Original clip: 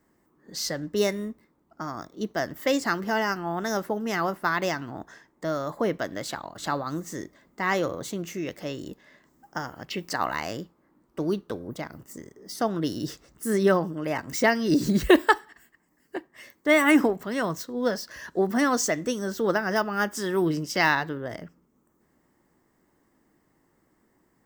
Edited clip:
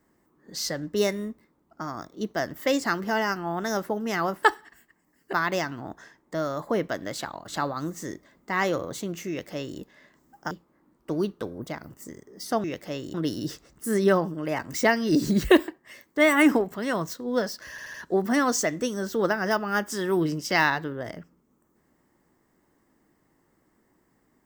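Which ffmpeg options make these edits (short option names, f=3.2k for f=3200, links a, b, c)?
-filter_complex "[0:a]asplit=10[a][b][c][d][e][f][g][h][i][j];[a]atrim=end=4.432[k];[b]atrim=start=15.268:end=16.172[l];[c]atrim=start=4.428:end=9.612[m];[d]atrim=start=10.598:end=12.732[n];[e]atrim=start=8.388:end=8.892[o];[f]atrim=start=12.728:end=15.272[p];[g]atrim=start=16.168:end=18.272[q];[h]atrim=start=18.188:end=18.272[r];[i]atrim=start=18.188:end=18.272[s];[j]atrim=start=18.188[t];[k][l]acrossfade=d=0.004:c1=hsin:c2=hsin[u];[u][m]acrossfade=d=0.004:c1=hsin:c2=hsin[v];[v][n]acrossfade=d=0.004:c1=hsin:c2=hsin[w];[w][o]acrossfade=d=0.004:c1=hsin:c2=hsin[x];[x][p]acrossfade=d=0.004:c1=hsin:c2=hsin[y];[y][q]acrossfade=d=0.004:c1=hsin:c2=hsin[z];[z][r]acrossfade=d=0.004:c1=hsin:c2=hsin[aa];[aa][s]acrossfade=d=0.004:c1=hsin:c2=hsin[ab];[ab][t]acrossfade=d=0.004:c1=hsin:c2=hsin"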